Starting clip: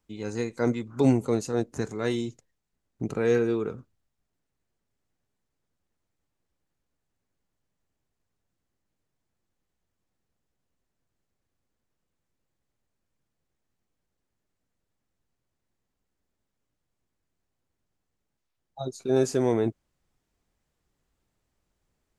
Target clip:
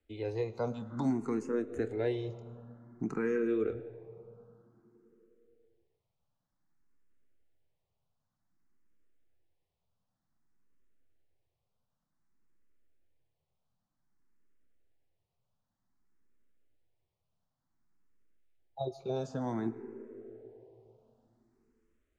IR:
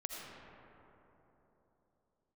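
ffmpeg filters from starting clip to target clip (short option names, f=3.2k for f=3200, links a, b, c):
-filter_complex "[0:a]acrossover=split=220|1900[a][b][c];[a]acompressor=threshold=-39dB:ratio=4[d];[b]acompressor=threshold=-27dB:ratio=4[e];[c]acompressor=threshold=-49dB:ratio=4[f];[d][e][f]amix=inputs=3:normalize=0,aemphasis=mode=reproduction:type=50fm,asplit=2[g][h];[1:a]atrim=start_sample=2205,adelay=27[i];[h][i]afir=irnorm=-1:irlink=0,volume=-12dB[j];[g][j]amix=inputs=2:normalize=0,asplit=2[k][l];[l]afreqshift=0.54[m];[k][m]amix=inputs=2:normalize=1"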